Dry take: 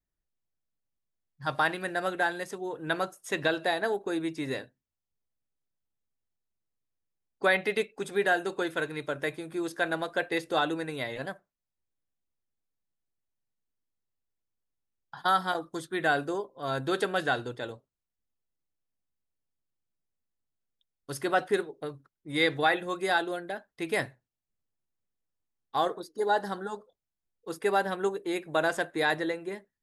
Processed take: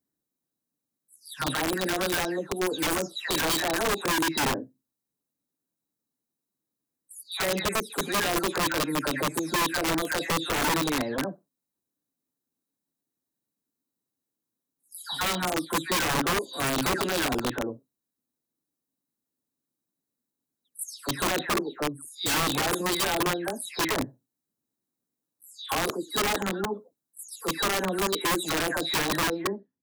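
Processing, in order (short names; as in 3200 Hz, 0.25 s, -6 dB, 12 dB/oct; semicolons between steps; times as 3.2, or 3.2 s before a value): spectral delay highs early, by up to 0.336 s; HPF 97 Hz 12 dB/oct; bell 2800 Hz -13.5 dB 1.7 oct; limiter -26.5 dBFS, peak gain reduction 10.5 dB; tilt shelf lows -4.5 dB, about 840 Hz; small resonant body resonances 260/3900 Hz, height 13 dB, ringing for 25 ms; wrapped overs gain 26.5 dB; gain +6 dB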